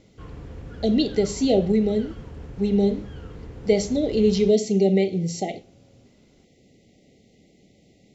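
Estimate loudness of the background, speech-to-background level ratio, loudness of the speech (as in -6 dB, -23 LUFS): -40.5 LUFS, 18.0 dB, -22.5 LUFS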